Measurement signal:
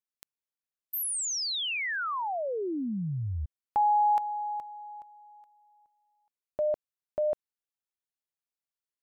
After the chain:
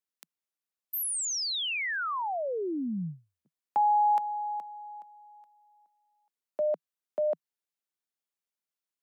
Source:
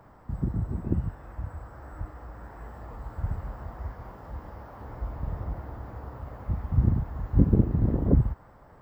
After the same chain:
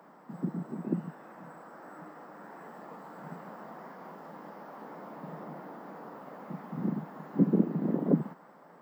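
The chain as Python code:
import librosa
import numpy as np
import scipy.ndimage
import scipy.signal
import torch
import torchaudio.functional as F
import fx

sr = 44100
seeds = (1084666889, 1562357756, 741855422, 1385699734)

y = scipy.signal.sosfilt(scipy.signal.butter(12, 160.0, 'highpass', fs=sr, output='sos'), x)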